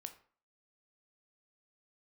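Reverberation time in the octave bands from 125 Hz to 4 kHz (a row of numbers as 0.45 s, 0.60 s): 0.40 s, 0.45 s, 0.45 s, 0.50 s, 0.40 s, 0.30 s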